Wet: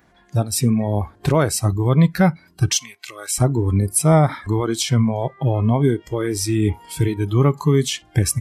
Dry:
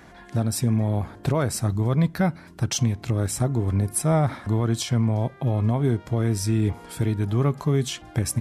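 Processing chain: spectral noise reduction 16 dB; 2.77–3.38 HPF 1100 Hz 12 dB/oct; gain +7 dB

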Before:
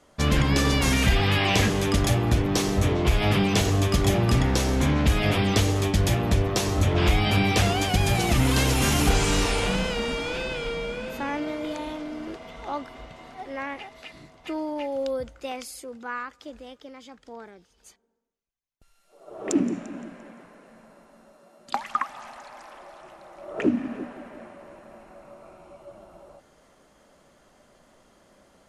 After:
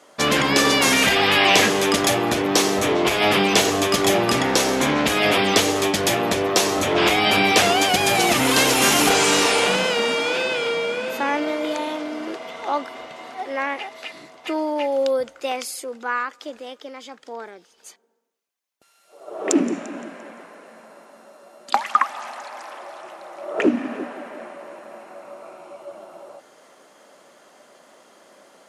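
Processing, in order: HPF 340 Hz 12 dB/oct; gain +8.5 dB

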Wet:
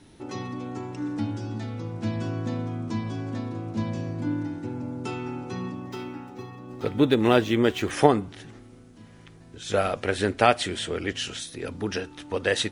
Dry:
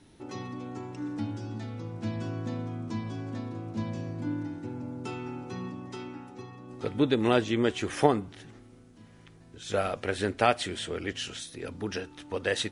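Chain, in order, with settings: 5.75–7.91 median filter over 5 samples; gain +4.5 dB

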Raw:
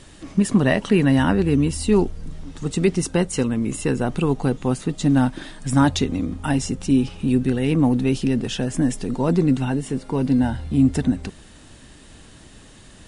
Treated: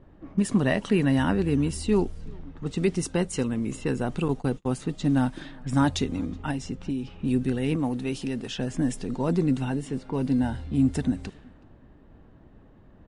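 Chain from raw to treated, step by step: 6.5–7.18 compressor 5:1, threshold -21 dBFS, peak gain reduction 8.5 dB; low-pass opened by the level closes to 820 Hz, open at -18 dBFS; 7.76–8.58 low shelf 330 Hz -7 dB; outdoor echo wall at 64 m, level -26 dB; 4.28–4.72 gate -24 dBFS, range -34 dB; gain -5.5 dB

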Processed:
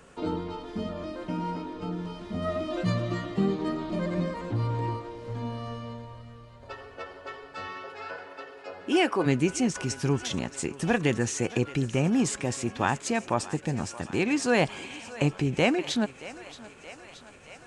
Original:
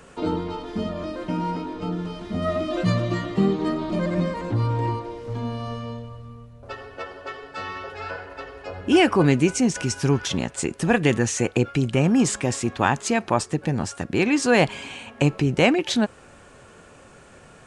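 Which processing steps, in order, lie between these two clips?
7.67–9.25 HPF 150 Hz -> 310 Hz 12 dB/oct; thinning echo 0.625 s, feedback 74%, high-pass 410 Hz, level -16 dB; gain -5.5 dB

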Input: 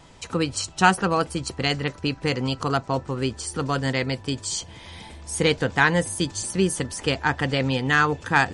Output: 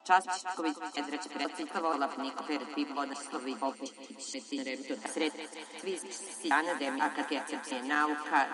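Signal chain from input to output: slices in reverse order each 0.241 s, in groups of 4; on a send: thinning echo 0.177 s, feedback 85%, high-pass 310 Hz, level -11 dB; on the sum: spectral gain 3.75–4.97, 560–1900 Hz -11 dB; rippled Chebyshev high-pass 210 Hz, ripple 9 dB; gain -4.5 dB

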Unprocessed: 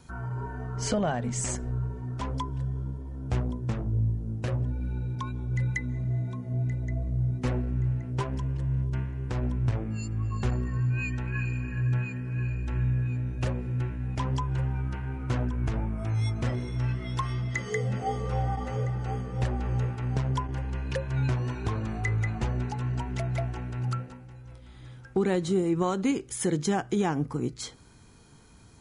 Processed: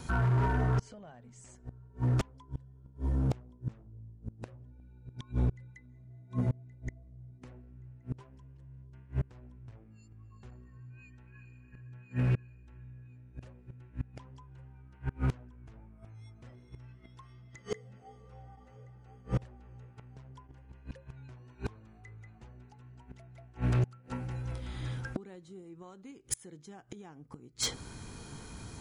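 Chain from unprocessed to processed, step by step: flipped gate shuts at -25 dBFS, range -32 dB; hard clip -32 dBFS, distortion -13 dB; gain +8.5 dB

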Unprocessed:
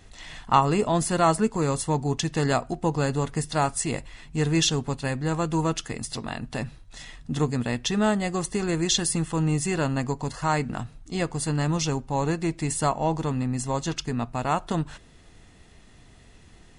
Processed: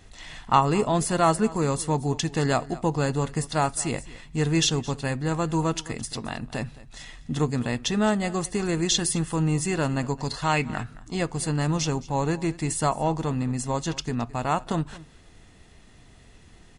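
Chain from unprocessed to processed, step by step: 10.17–11.14 bell 5700 Hz -> 910 Hz +13 dB 0.43 oct; echo 0.217 s -19.5 dB

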